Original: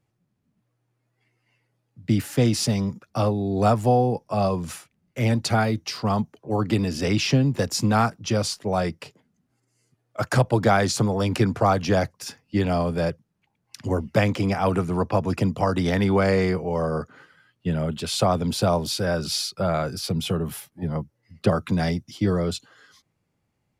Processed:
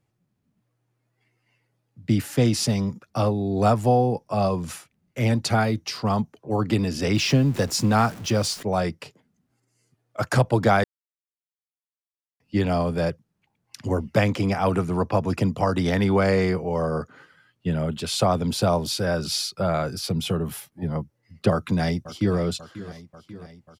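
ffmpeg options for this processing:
-filter_complex "[0:a]asettb=1/sr,asplit=3[s0][s1][s2];[s0]atrim=end=7.154[s3];[s1]atrim=start=7.15:end=8.63,asetpts=PTS-STARTPTS,afade=t=in:d=0.004:c=qsin,afade=t=out:st=1.476:d=0.004:c=qsin,aeval=exprs='val(0)+0.5*0.0168*sgn(val(0))':c=same[s4];[s2]atrim=start=8.626[s5];[s3][s4]acrossfade=d=0.004:c1=hsin:c2=qsin[s6];[s6][s5]acrossfade=d=0.004:c1=qsin:c2=hsin,asplit=2[s7][s8];[s8]afade=t=in:st=21.51:d=0.01,afade=t=out:st=22.38:d=0.01,aecho=0:1:540|1080|1620|2160|2700|3240|3780:0.16788|0.109122|0.0709295|0.0461042|0.0299677|0.019479|0.0126614[s9];[s7][s9]amix=inputs=2:normalize=0,asplit=3[s10][s11][s12];[s10]atrim=end=10.84,asetpts=PTS-STARTPTS,afade=t=out:st=10.836:d=0.004:c=hsin[s13];[s11]atrim=start=10.84:end=12.4,asetpts=PTS-STARTPTS,volume=0[s14];[s12]atrim=start=12.4,asetpts=PTS-STARTPTS,afade=t=in:d=0.004:c=hsin[s15];[s13][s14][s15]concat=n=3:v=0:a=1"

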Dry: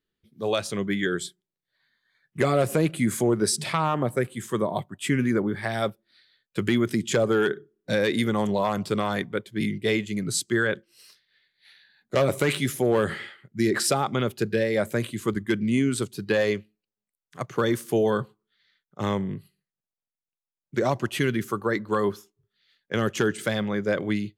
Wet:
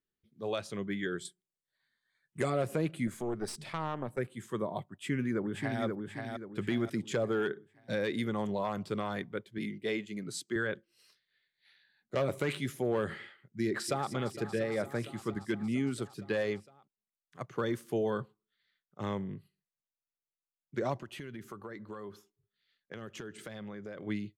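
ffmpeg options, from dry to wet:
-filter_complex "[0:a]asettb=1/sr,asplit=3[s0][s1][s2];[s0]atrim=end=1.254[s3];[s1]atrim=start=1.25:end=2.5,asetpts=PTS-STARTPTS,afade=t=in:d=0.004:c=qsin,afade=t=out:st=1.246:d=0.004:c=qsin,equalizer=f=8600:t=o:w=0.77:g=14[s4];[s2]atrim=start=2.496[s5];[s3][s4]acrossfade=d=0.004:c1=hsin:c2=qsin[s6];[s6][s5]acrossfade=d=0.004:c1=qsin:c2=hsin,asettb=1/sr,asplit=3[s7][s8][s9];[s7]atrim=end=3.074[s10];[s8]atrim=start=3.07:end=4.18,asetpts=PTS-STARTPTS,afade=t=in:d=0.004:c=qsin,afade=t=out:st=1.106:d=0.004:c=qsin,aeval=exprs='(tanh(5.01*val(0)+0.7)-tanh(0.7))/5.01':c=same[s11];[s9]atrim=start=4.176[s12];[s10][s11]acrossfade=d=0.004:c1=hsin:c2=qsin[s13];[s13][s12]acrossfade=d=0.004:c1=qsin:c2=hsin,asplit=2[s14][s15];[s15]afade=t=in:st=4.89:d=0.01,afade=t=out:st=5.83:d=0.01,aecho=0:1:530|1060|1590|2120|2650:0.630957|0.252383|0.100953|0.0403813|0.0161525[s16];[s14][s16]amix=inputs=2:normalize=0,asettb=1/sr,asplit=3[s17][s18][s19];[s17]atrim=end=9.584[s20];[s18]atrim=start=9.58:end=10.56,asetpts=PTS-STARTPTS,afade=t=in:d=0.004:c=qsin,afade=t=out:st=0.976:d=0.004:c=qsin,highpass=180[s21];[s19]atrim=start=10.556[s22];[s20][s21]acrossfade=d=0.004:c1=hsin:c2=qsin[s23];[s23][s22]acrossfade=d=0.004:c1=qsin:c2=hsin,asplit=2[s24][s25];[s25]afade=t=in:st=13.65:d=0.01,afade=t=out:st=14.11:d=0.01,aecho=0:1:230|460|690|920|1150|1380|1610|1840|2070|2300|2530|2760:0.237137|0.201567|0.171332|0.145632|0.123787|0.105219|0.0894362|0.0760208|0.0646177|0.054925|0.0466863|0.0396833[s26];[s24][s26]amix=inputs=2:normalize=0,asettb=1/sr,asplit=3[s27][s28][s29];[s27]atrim=end=21.014[s30];[s28]atrim=start=21.01:end=24.07,asetpts=PTS-STARTPTS,afade=t=in:d=0.004:c=qsin,afade=t=out:st=3.056:d=0.004:c=qsin,acompressor=threshold=0.0316:ratio=8:attack=3.2:release=140:knee=1:detection=peak[s31];[s29]atrim=start=24.066[s32];[s30][s31]acrossfade=d=0.004:c1=hsin:c2=qsin[s33];[s33][s32]acrossfade=d=0.004:c1=qsin:c2=hsin,highshelf=f=5100:g=-7.5,volume=0.355"

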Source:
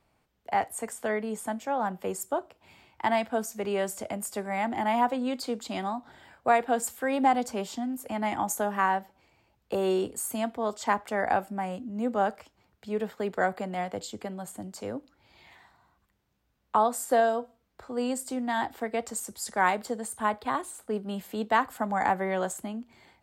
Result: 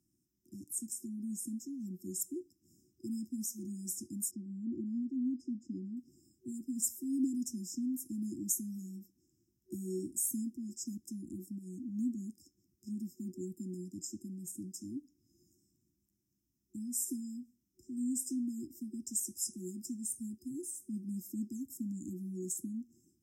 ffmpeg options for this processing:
-filter_complex "[0:a]asettb=1/sr,asplit=3[s0][s1][s2];[s0]atrim=end=4.314[s3];[s1]atrim=start=4.31:end=5.97,asetpts=PTS-STARTPTS,afade=t=in:d=0.004:c=qsin,afade=t=out:st=1.656:d=0.004:c=qsin,lowpass=2100[s4];[s2]atrim=start=5.966[s5];[s3][s4]acrossfade=d=0.004:c1=hsin:c2=qsin[s6];[s6][s5]acrossfade=d=0.004:c1=qsin:c2=hsin,asettb=1/sr,asplit=3[s7][s8][s9];[s7]atrim=end=11.464[s10];[s8]atrim=start=11.46:end=11.92,asetpts=PTS-STARTPTS,afade=t=in:d=0.004:c=qsin,afade=t=out:st=0.456:d=0.004:c=qsin,acompressor=threshold=0.0224:ratio=6:attack=3.2:release=140:knee=1:detection=peak[s11];[s9]atrim=start=11.916[s12];[s10][s11]acrossfade=d=0.004:c1=hsin:c2=qsin[s13];[s13][s12]acrossfade=d=0.004:c1=qsin:c2=hsin,afftfilt=real='re*(1-between(b*sr/4096,370,5000))':imag='im*(1-between(b*sr/4096,370,5000))':win_size=4096:overlap=0.75,highpass=f=260:p=1"

